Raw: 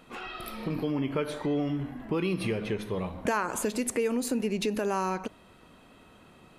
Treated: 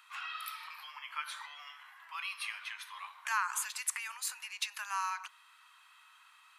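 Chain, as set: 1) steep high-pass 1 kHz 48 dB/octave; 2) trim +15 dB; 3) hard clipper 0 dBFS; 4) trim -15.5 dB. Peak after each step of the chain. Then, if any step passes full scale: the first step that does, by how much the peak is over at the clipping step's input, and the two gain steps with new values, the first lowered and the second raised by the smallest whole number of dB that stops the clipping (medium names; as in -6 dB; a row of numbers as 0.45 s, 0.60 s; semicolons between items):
-18.0 dBFS, -3.0 dBFS, -3.0 dBFS, -18.5 dBFS; nothing clips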